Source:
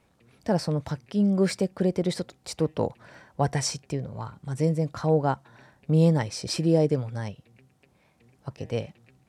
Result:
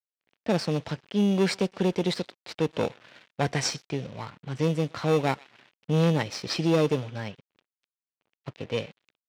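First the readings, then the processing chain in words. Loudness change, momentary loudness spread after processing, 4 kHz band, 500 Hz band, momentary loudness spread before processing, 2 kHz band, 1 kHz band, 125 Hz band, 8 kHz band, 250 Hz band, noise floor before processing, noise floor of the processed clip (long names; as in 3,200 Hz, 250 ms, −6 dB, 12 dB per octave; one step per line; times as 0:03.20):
−1.0 dB, 16 LU, +3.0 dB, −0.5 dB, 15 LU, +5.0 dB, −0.5 dB, −2.5 dB, −2.0 dB, −1.5 dB, −65 dBFS, below −85 dBFS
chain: in parallel at −10 dB: sample-rate reduction 3,100 Hz, jitter 0%
on the sum: tube saturation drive 16 dB, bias 0.4
on a send: feedback echo with a high-pass in the loop 124 ms, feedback 41%, high-pass 610 Hz, level −21 dB
on the sum: low-pass that shuts in the quiet parts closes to 2,400 Hz, open at −20.5 dBFS
high-shelf EQ 2,400 Hz −8 dB
dead-zone distortion −51.5 dBFS
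meter weighting curve D
level +2 dB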